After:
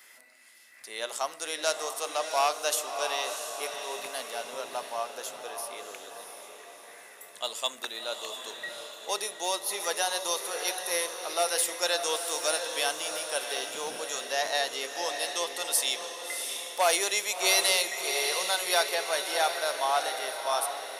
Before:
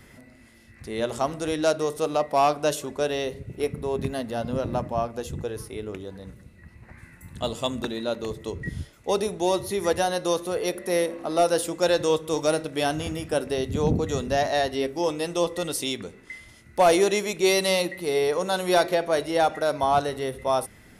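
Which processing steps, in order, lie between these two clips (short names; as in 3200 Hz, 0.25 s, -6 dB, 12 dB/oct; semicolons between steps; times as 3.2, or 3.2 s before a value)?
HPF 660 Hz 12 dB/oct; tilt +2.5 dB/oct; diffused feedback echo 0.686 s, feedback 50%, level -6.5 dB; gain -3 dB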